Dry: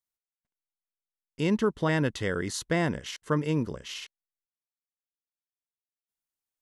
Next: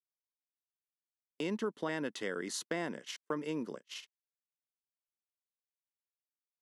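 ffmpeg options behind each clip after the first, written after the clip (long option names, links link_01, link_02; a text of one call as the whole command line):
ffmpeg -i in.wav -af "agate=range=-41dB:threshold=-37dB:ratio=16:detection=peak,highpass=frequency=210:width=0.5412,highpass=frequency=210:width=1.3066,acompressor=threshold=-39dB:ratio=2" out.wav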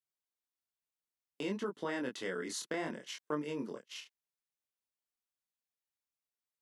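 ffmpeg -i in.wav -af "flanger=delay=20:depth=8:speed=0.6,volume=2dB" out.wav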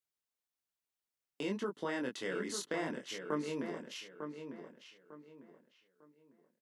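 ffmpeg -i in.wav -filter_complex "[0:a]asplit=2[link_01][link_02];[link_02]adelay=900,lowpass=frequency=3000:poles=1,volume=-7.5dB,asplit=2[link_03][link_04];[link_04]adelay=900,lowpass=frequency=3000:poles=1,volume=0.31,asplit=2[link_05][link_06];[link_06]adelay=900,lowpass=frequency=3000:poles=1,volume=0.31,asplit=2[link_07][link_08];[link_08]adelay=900,lowpass=frequency=3000:poles=1,volume=0.31[link_09];[link_01][link_03][link_05][link_07][link_09]amix=inputs=5:normalize=0" out.wav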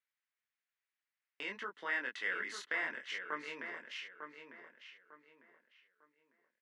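ffmpeg -i in.wav -af "bandpass=frequency=1900:width_type=q:width=2.4:csg=0,volume=9dB" out.wav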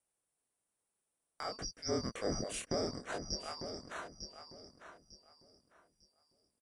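ffmpeg -i in.wav -af "afftfilt=real='real(if(lt(b,272),68*(eq(floor(b/68),0)*1+eq(floor(b/68),1)*2+eq(floor(b/68),2)*3+eq(floor(b/68),3)*0)+mod(b,68),b),0)':imag='imag(if(lt(b,272),68*(eq(floor(b/68),0)*1+eq(floor(b/68),1)*2+eq(floor(b/68),2)*3+eq(floor(b/68),3)*0)+mod(b,68),b),0)':win_size=2048:overlap=0.75,aexciter=amount=9.6:drive=4.1:freq=8200,aresample=22050,aresample=44100,volume=1.5dB" out.wav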